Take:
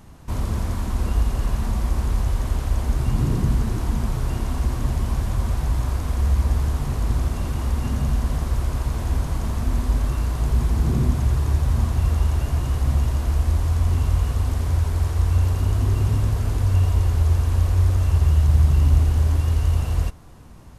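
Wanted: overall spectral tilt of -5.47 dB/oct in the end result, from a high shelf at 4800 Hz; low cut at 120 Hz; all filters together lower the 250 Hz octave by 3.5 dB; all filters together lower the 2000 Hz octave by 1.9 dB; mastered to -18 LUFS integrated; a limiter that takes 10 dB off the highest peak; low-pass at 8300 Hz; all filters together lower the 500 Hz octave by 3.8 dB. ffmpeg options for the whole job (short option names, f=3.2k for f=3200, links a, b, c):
-af "highpass=120,lowpass=8.3k,equalizer=f=250:t=o:g=-3,equalizer=f=500:t=o:g=-4,equalizer=f=2k:t=o:g=-3,highshelf=f=4.8k:g=4.5,volume=15dB,alimiter=limit=-9dB:level=0:latency=1"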